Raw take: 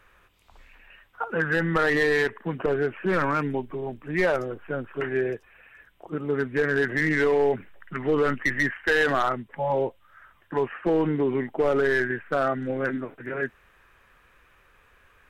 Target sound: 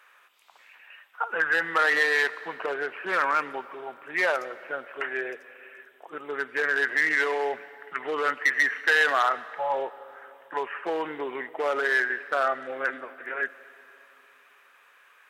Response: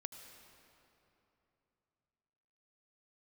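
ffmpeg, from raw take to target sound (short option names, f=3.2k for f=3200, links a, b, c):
-filter_complex "[0:a]highpass=770,asplit=2[a][b];[1:a]atrim=start_sample=2205[c];[b][c]afir=irnorm=-1:irlink=0,volume=-3.5dB[d];[a][d]amix=inputs=2:normalize=0"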